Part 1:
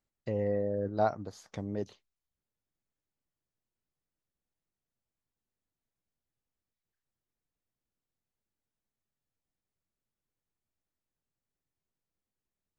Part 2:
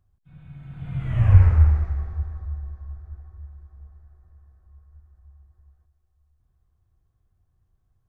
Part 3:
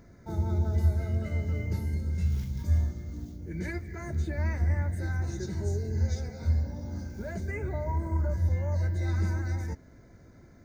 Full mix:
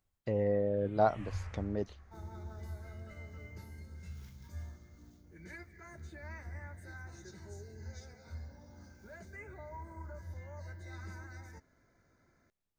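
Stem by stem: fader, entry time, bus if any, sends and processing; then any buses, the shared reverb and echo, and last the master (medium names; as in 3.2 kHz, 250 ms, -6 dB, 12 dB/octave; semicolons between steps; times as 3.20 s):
+2.5 dB, 0.00 s, no send, tilt EQ -2 dB/octave
-9.5 dB, 0.00 s, no send, treble shelf 2.1 kHz +10 dB; auto duck -11 dB, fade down 1.70 s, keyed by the first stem
-10.5 dB, 1.85 s, no send, peaking EQ 1.3 kHz +4.5 dB 1 oct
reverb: none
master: bass shelf 460 Hz -9 dB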